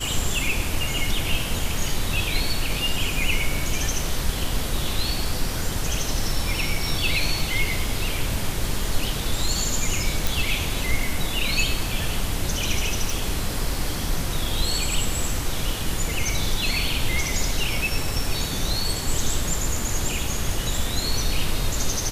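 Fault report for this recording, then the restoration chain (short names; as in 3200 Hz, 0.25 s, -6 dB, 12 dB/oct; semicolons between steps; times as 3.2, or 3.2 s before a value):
10.27 pop
13.1 pop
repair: de-click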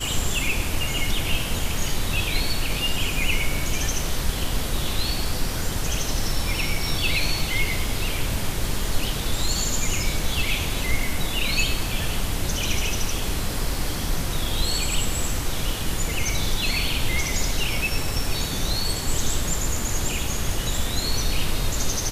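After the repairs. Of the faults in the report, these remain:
none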